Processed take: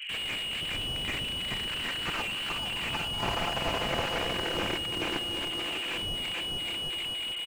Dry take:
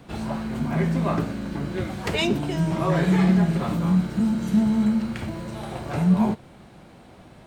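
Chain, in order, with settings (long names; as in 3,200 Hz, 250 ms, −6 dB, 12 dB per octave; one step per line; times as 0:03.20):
0:03.21–0:04.73: compressing power law on the bin magnitudes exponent 0.52
comb filter 5.8 ms, depth 89%
bouncing-ball delay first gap 430 ms, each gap 0.75×, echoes 5
voice inversion scrambler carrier 3,100 Hz
high-pass filter sweep 2,200 Hz → 330 Hz, 0:01.19–0:04.93
slew-rate limiting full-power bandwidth 60 Hz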